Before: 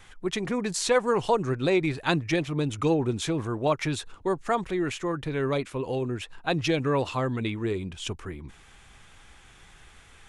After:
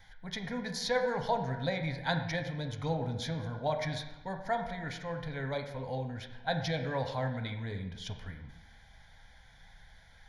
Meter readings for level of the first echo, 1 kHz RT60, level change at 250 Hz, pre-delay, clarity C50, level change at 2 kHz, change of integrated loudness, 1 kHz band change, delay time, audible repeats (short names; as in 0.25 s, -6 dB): none, 1.0 s, -10.5 dB, 4 ms, 7.5 dB, -5.0 dB, -7.5 dB, -5.5 dB, none, none